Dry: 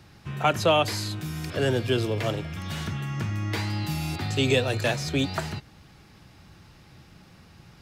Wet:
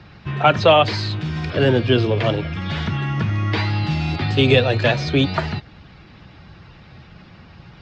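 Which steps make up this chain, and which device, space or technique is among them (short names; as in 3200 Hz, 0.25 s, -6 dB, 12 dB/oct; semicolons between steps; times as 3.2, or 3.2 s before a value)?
clip after many re-uploads (LPF 4400 Hz 24 dB/oct; bin magnitudes rounded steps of 15 dB); gain +8.5 dB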